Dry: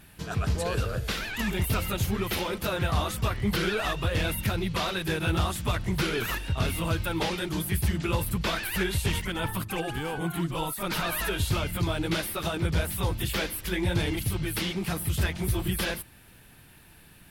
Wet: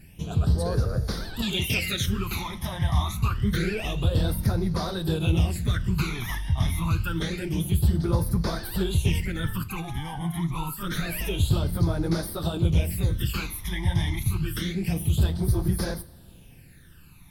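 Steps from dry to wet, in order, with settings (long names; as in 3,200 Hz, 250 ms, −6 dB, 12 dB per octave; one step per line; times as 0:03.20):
low-shelf EQ 200 Hz +5.5 dB
all-pass phaser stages 12, 0.27 Hz, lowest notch 440–2,800 Hz
0:01.42–0:02.06: meter weighting curve D
convolution reverb, pre-delay 3 ms, DRR 12 dB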